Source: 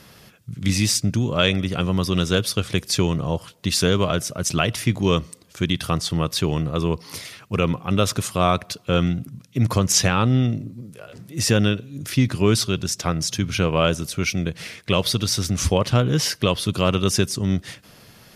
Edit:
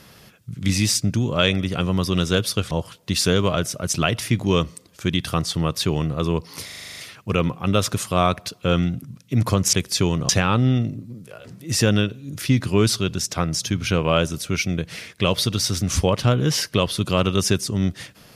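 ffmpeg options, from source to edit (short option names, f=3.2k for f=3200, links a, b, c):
-filter_complex "[0:a]asplit=12[a][b][c][d][e][f][g][h][i][j][k][l];[a]atrim=end=2.712[m];[b]atrim=start=3.268:end=7.252[n];[c]atrim=start=7.208:end=7.252[o];[d]atrim=start=7.208:end=7.252[p];[e]atrim=start=7.208:end=7.252[q];[f]atrim=start=7.208:end=7.252[r];[g]atrim=start=7.208:end=7.252[s];[h]atrim=start=7.208:end=7.252[t];[i]atrim=start=7.208:end=7.252[u];[j]atrim=start=7.208:end=9.972[v];[k]atrim=start=2.708:end=3.272[w];[l]atrim=start=9.968[x];[m][n]acrossfade=d=0.004:c1=hsin:c2=hsin[y];[y][o]acrossfade=d=0.004:c1=hsin:c2=hsin[z];[z][p]acrossfade=d=0.004:c1=hsin:c2=hsin[aa];[aa][q]acrossfade=d=0.004:c1=hsin:c2=hsin[ab];[ab][r]acrossfade=d=0.004:c1=hsin:c2=hsin[ac];[ac][s]acrossfade=d=0.004:c1=hsin:c2=hsin[ad];[ad][t]acrossfade=d=0.004:c1=hsin:c2=hsin[ae];[ae][u]acrossfade=d=0.004:c1=hsin:c2=hsin[af];[af][v]acrossfade=d=0.004:c1=hsin:c2=hsin[ag];[ag][w]acrossfade=d=0.004:c1=hsin:c2=hsin[ah];[ah][x]acrossfade=d=0.004:c1=hsin:c2=hsin"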